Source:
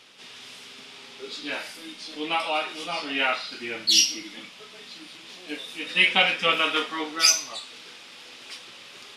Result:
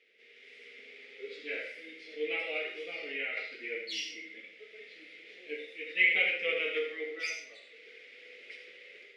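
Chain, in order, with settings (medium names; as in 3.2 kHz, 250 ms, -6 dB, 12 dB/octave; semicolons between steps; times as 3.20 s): level rider gain up to 7 dB; two resonant band-passes 980 Hz, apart 2.2 oct; reverberation RT60 0.35 s, pre-delay 60 ms, DRR 4.5 dB; 2.70–3.37 s: compression 2:1, threshold -33 dBFS, peak gain reduction 6.5 dB; trim -4.5 dB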